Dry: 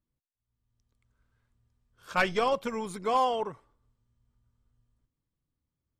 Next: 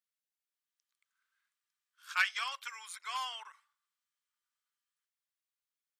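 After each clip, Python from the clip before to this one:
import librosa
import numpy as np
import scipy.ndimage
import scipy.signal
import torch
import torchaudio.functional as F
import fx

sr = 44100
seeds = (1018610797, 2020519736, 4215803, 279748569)

y = scipy.signal.sosfilt(scipy.signal.cheby2(4, 80, 230.0, 'highpass', fs=sr, output='sos'), x)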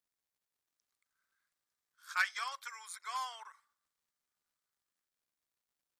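y = fx.peak_eq(x, sr, hz=2800.0, db=-13.5, octaves=0.43)
y = fx.dmg_crackle(y, sr, seeds[0], per_s=210.0, level_db=-74.0)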